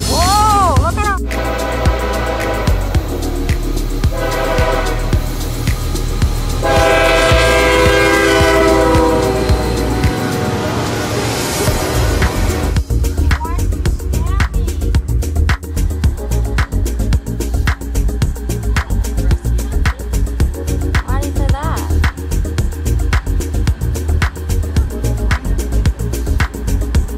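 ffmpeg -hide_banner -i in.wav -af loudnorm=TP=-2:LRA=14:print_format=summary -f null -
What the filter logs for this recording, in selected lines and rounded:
Input Integrated:    -15.9 LUFS
Input True Peak:      -3.6 dBTP
Input LRA:             6.6 LU
Input Threshold:     -25.9 LUFS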